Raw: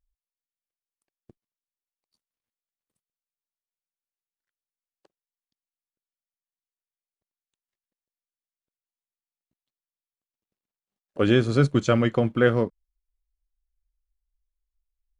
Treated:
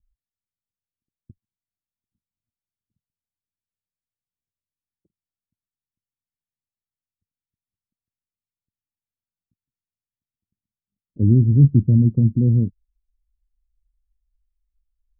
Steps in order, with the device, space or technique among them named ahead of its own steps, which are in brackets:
the neighbour's flat through the wall (low-pass filter 240 Hz 24 dB per octave; parametric band 94 Hz +7 dB 0.81 octaves)
level +7.5 dB

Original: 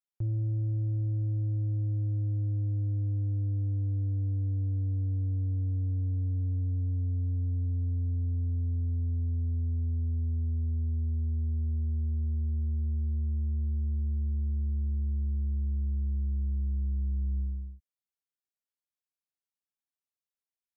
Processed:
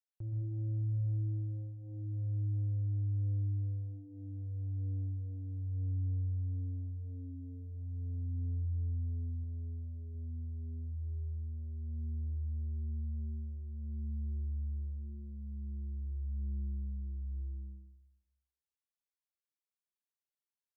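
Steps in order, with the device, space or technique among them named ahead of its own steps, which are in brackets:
bathroom (convolution reverb RT60 0.80 s, pre-delay 116 ms, DRR 2.5 dB)
mains-hum notches 60/120/180/240 Hz
0:09.43–0:10.15: dynamic equaliser 130 Hz, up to −4 dB, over −41 dBFS, Q 1.1
level −9 dB

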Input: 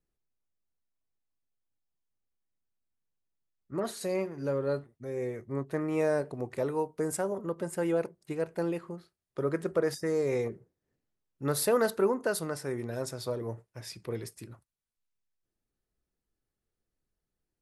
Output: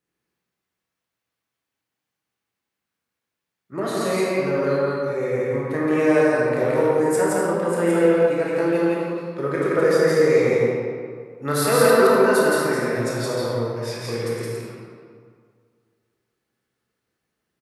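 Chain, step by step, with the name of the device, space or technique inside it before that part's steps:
stadium PA (high-pass filter 120 Hz; parametric band 1,900 Hz +6 dB 2.2 octaves; loudspeakers that aren't time-aligned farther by 58 metres −1 dB, 84 metres −9 dB; convolution reverb RT60 2.0 s, pre-delay 19 ms, DRR −4 dB)
level +2 dB

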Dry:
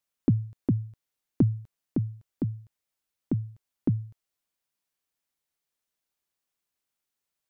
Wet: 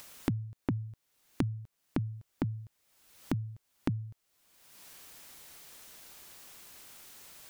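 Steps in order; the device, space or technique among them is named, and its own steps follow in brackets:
upward and downward compression (upward compression, threshold −31 dBFS; downward compressor, threshold −32 dBFS, peak gain reduction 14 dB)
level +3 dB

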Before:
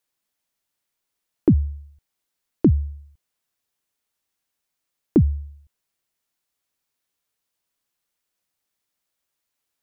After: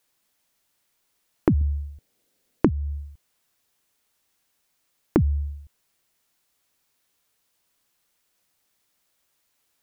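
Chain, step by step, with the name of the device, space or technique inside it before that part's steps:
0:01.61–0:02.69: octave-band graphic EQ 125/250/500/1,000 Hz +4/+7/+9/−5 dB
serial compression, leveller first (downward compressor 2 to 1, threshold −17 dBFS, peak gain reduction 8 dB; downward compressor 4 to 1, threshold −27 dBFS, peak gain reduction 14 dB)
level +8.5 dB

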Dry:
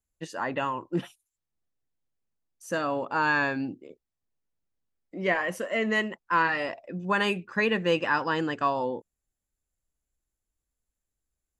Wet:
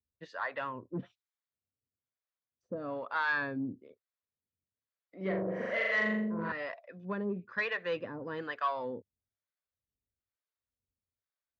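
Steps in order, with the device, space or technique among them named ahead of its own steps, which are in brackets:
0:05.16–0:06.52: flutter between parallel walls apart 7.2 metres, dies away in 1.4 s
guitar amplifier with harmonic tremolo (two-band tremolo in antiphase 1.1 Hz, depth 100%, crossover 540 Hz; soft clipping −21.5 dBFS, distortion −17 dB; loudspeaker in its box 90–4,000 Hz, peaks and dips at 93 Hz +8 dB, 160 Hz −7 dB, 330 Hz −8 dB, 830 Hz −8 dB, 2,800 Hz −9 dB)

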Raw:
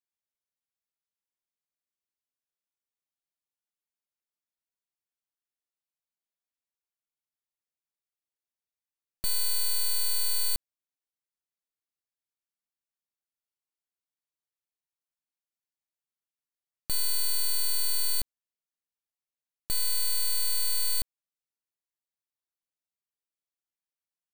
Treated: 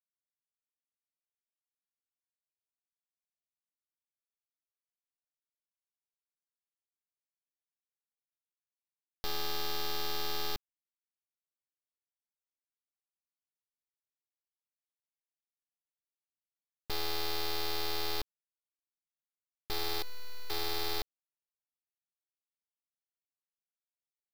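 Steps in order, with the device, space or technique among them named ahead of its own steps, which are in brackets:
0:20.02–0:20.50: low-pass filter 2,400 Hz 12 dB per octave
early companding sampler (sample-rate reduction 8,500 Hz, jitter 0%; log-companded quantiser 8 bits)
level −7 dB

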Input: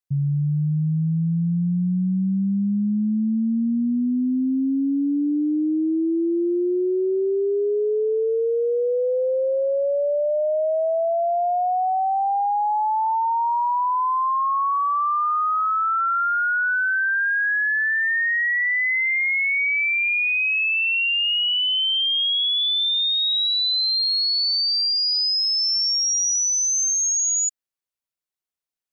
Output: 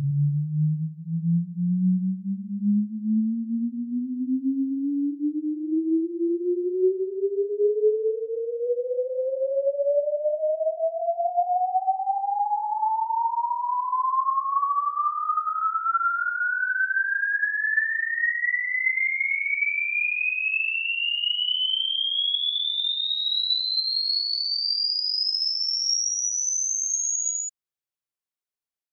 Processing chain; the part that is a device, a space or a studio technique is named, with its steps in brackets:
reverse reverb (reversed playback; convolution reverb RT60 1.3 s, pre-delay 55 ms, DRR −4 dB; reversed playback)
level −9 dB

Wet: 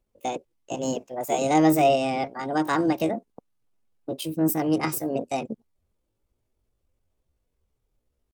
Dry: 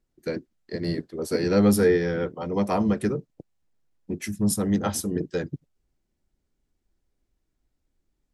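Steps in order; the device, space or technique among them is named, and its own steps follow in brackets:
chipmunk voice (pitch shifter +7.5 semitones)
dynamic equaliser 5,300 Hz, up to +6 dB, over −54 dBFS, Q 2.6

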